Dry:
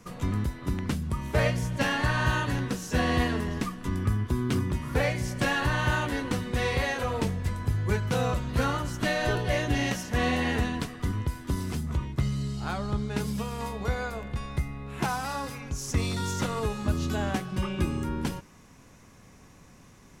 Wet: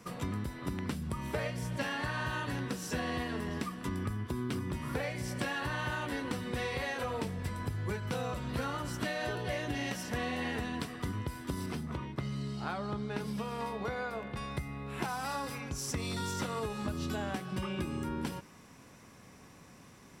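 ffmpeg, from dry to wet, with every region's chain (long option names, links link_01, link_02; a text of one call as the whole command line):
ffmpeg -i in.wav -filter_complex "[0:a]asettb=1/sr,asplit=3[link_01][link_02][link_03];[link_01]atrim=end=11.664[link_04];[link_02]atrim=start=11.66:end=14.37,asetpts=PTS-STARTPTS,afade=type=in:duration=0.004:curve=qsin,afade=type=out:start_time=2.706:duration=0.004:curve=qsin,highpass=frequency=150:poles=1,aemphasis=mode=reproduction:type=cd,bandreject=frequency=7400:width=15[link_05];[link_03]atrim=start=14.366[link_06];[link_04][link_05]acrossfade=duration=0.004:curve1=hsin:curve2=qsin[link_07];[link_07][link_06]acrossfade=duration=0.004:curve1=qsin:curve2=hsin,highpass=frequency=130:poles=1,bandreject=frequency=6600:width=9.5,acompressor=threshold=-32dB:ratio=6" out.wav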